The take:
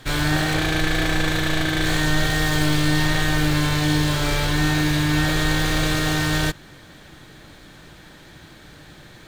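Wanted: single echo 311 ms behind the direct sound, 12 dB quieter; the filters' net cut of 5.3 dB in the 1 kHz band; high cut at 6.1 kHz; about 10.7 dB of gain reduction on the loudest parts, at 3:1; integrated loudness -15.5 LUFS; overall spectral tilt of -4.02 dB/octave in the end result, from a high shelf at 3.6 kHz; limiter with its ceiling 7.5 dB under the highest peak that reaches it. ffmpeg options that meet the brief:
-af "lowpass=6100,equalizer=f=1000:t=o:g=-8,highshelf=f=3600:g=7,acompressor=threshold=0.0316:ratio=3,alimiter=level_in=1.06:limit=0.0631:level=0:latency=1,volume=0.944,aecho=1:1:311:0.251,volume=8.91"

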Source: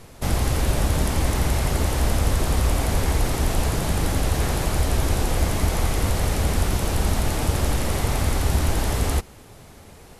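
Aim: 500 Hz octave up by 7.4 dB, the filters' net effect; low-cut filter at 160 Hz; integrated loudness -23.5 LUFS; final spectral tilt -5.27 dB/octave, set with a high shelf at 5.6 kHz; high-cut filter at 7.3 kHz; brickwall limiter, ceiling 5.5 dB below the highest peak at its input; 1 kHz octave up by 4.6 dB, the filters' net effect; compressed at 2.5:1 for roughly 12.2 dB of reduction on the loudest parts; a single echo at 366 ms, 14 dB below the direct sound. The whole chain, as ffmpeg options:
-af "highpass=160,lowpass=7300,equalizer=f=500:t=o:g=8.5,equalizer=f=1000:t=o:g=3,highshelf=f=5600:g=-7.5,acompressor=threshold=0.0112:ratio=2.5,alimiter=level_in=1.68:limit=0.0631:level=0:latency=1,volume=0.596,aecho=1:1:366:0.2,volume=5.31"

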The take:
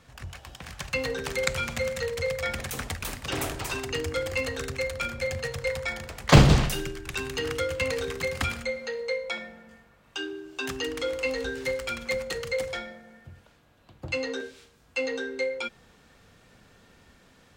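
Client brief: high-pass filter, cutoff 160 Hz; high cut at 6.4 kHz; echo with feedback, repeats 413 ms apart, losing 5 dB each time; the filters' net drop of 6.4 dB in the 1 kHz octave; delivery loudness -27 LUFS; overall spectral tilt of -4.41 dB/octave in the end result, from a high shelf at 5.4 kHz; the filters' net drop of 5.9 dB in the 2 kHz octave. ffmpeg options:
-af "highpass=160,lowpass=6400,equalizer=f=1000:t=o:g=-7,equalizer=f=2000:t=o:g=-6.5,highshelf=f=5400:g=5.5,aecho=1:1:413|826|1239|1652|2065|2478|2891:0.562|0.315|0.176|0.0988|0.0553|0.031|0.0173,volume=1.5"

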